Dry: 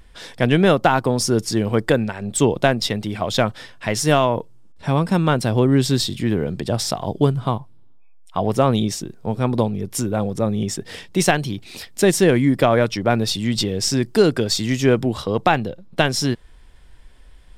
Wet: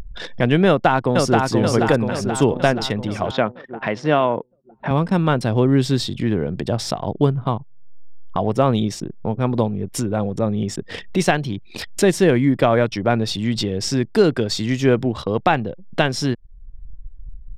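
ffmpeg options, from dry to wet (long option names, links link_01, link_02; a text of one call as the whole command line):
ffmpeg -i in.wav -filter_complex "[0:a]asplit=2[link_01][link_02];[link_02]afade=type=in:start_time=0.67:duration=0.01,afade=type=out:start_time=1.47:duration=0.01,aecho=0:1:480|960|1440|1920|2400|2880|3360|3840|4320:0.749894|0.449937|0.269962|0.161977|0.0971863|0.0583118|0.0349871|0.0209922|0.0125953[link_03];[link_01][link_03]amix=inputs=2:normalize=0,asettb=1/sr,asplit=3[link_04][link_05][link_06];[link_04]atrim=end=3.314[link_07];[link_05]atrim=start=3.31:end=4.91,asetpts=PTS-STARTPTS,afade=type=in:duration=0.004:curve=qsin,afade=type=out:start_time=1.596:duration=0.004:curve=qsin,highpass=170,lowpass=3000[link_08];[link_06]atrim=start=4.906[link_09];[link_07][link_08]acrossfade=duration=0.004:curve1=hsin:curve2=qsin[link_10];[link_10][link_09]acrossfade=duration=0.004:curve1=qsin:curve2=hsin,anlmdn=6.31,highshelf=frequency=6700:gain=-11.5,acompressor=mode=upward:threshold=-19dB:ratio=2.5" out.wav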